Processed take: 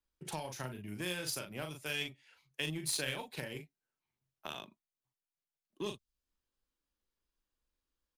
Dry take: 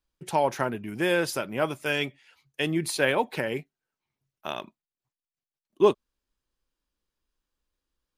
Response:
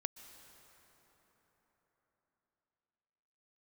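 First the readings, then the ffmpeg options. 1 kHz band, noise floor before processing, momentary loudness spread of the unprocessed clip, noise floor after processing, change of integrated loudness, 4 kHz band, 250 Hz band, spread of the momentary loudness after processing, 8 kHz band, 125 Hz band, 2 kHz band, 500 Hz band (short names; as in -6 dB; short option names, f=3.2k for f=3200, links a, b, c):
-17.5 dB, under -85 dBFS, 13 LU, under -85 dBFS, -12.5 dB, -5.5 dB, -14.0 dB, 14 LU, -3.0 dB, -8.5 dB, -12.0 dB, -18.5 dB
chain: -filter_complex "[0:a]asplit=2[a][b];[b]adelay=39,volume=-4.5dB[c];[a][c]amix=inputs=2:normalize=0,acrossover=split=140|3000[d][e][f];[e]acompressor=threshold=-39dB:ratio=4[g];[d][g][f]amix=inputs=3:normalize=0,aeval=exprs='0.119*(cos(1*acos(clip(val(0)/0.119,-1,1)))-cos(1*PI/2))+0.00596*(cos(7*acos(clip(val(0)/0.119,-1,1)))-cos(7*PI/2))':c=same,volume=-3dB"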